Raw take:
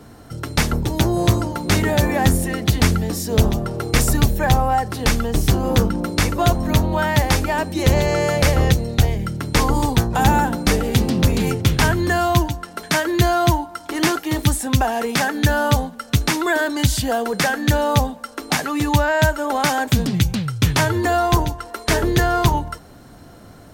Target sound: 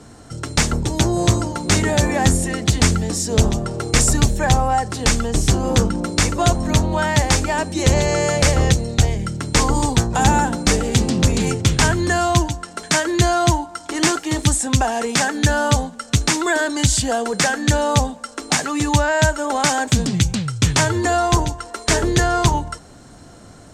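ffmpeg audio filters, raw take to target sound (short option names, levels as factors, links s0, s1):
-af "lowpass=f=7700:t=q:w=2.8"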